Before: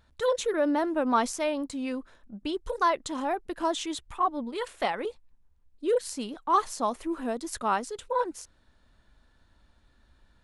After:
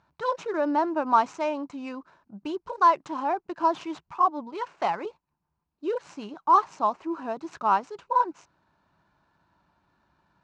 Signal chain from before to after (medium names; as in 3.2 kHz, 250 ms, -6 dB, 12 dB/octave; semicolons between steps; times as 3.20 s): median filter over 9 samples; cabinet simulation 160–5900 Hz, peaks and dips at 160 Hz +7 dB, 240 Hz -9 dB, 490 Hz -9 dB, 960 Hz +6 dB, 1.9 kHz -7 dB, 3.4 kHz -9 dB; trim +2.5 dB